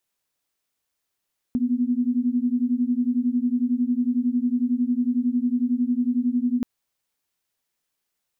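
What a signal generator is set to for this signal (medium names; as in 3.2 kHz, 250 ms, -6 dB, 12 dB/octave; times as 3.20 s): beating tones 240 Hz, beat 11 Hz, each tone -22.5 dBFS 5.08 s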